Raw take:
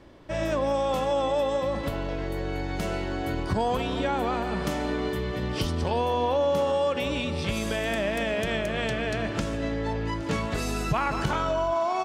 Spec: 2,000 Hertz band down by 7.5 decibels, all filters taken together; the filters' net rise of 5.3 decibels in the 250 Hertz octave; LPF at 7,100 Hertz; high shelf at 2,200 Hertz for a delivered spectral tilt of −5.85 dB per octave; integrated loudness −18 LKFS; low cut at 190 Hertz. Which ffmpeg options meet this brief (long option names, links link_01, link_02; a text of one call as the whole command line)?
ffmpeg -i in.wav -af "highpass=190,lowpass=7100,equalizer=frequency=250:width_type=o:gain=8.5,equalizer=frequency=2000:width_type=o:gain=-6.5,highshelf=frequency=2200:gain=-6,volume=9dB" out.wav